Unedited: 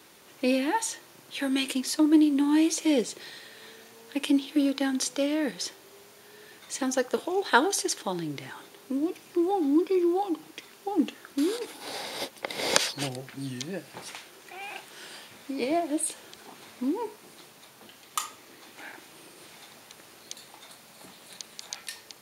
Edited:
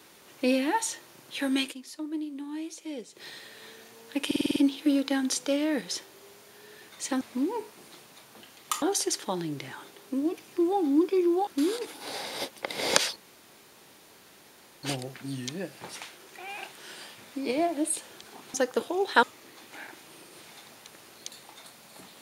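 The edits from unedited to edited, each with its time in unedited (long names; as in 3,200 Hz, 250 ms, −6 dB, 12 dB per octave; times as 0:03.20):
0:01.61–0:03.26: duck −14 dB, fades 0.13 s
0:04.26: stutter 0.05 s, 7 plays
0:06.91–0:07.60: swap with 0:16.67–0:18.28
0:10.25–0:11.27: remove
0:12.96: splice in room tone 1.67 s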